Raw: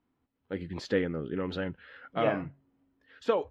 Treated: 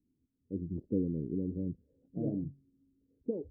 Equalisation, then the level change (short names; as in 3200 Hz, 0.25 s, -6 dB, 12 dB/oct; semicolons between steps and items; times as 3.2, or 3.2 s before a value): inverse Chebyshev low-pass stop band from 1200 Hz, stop band 60 dB; +1.0 dB